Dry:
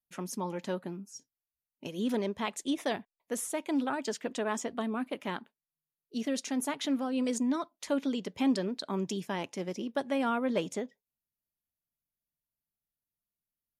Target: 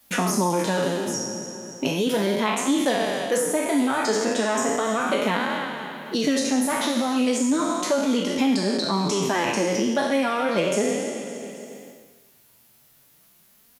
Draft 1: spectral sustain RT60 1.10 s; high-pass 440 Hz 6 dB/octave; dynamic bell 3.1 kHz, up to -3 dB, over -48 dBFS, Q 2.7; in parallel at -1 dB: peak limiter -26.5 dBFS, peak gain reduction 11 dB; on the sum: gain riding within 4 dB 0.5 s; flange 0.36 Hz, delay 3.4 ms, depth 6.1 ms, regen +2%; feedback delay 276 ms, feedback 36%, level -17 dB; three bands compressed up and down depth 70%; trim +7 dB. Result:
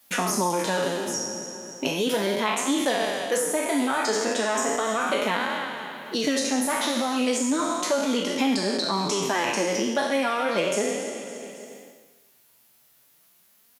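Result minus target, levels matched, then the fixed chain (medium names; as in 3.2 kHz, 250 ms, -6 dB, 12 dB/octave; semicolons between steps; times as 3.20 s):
125 Hz band -4.0 dB
spectral sustain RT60 1.10 s; high-pass 130 Hz 6 dB/octave; dynamic bell 3.1 kHz, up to -3 dB, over -48 dBFS, Q 2.7; in parallel at -1 dB: peak limiter -26.5 dBFS, peak gain reduction 11 dB; on the sum: gain riding within 4 dB 0.5 s; flange 0.36 Hz, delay 3.4 ms, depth 6.1 ms, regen +2%; feedback delay 276 ms, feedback 36%, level -17 dB; three bands compressed up and down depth 70%; trim +7 dB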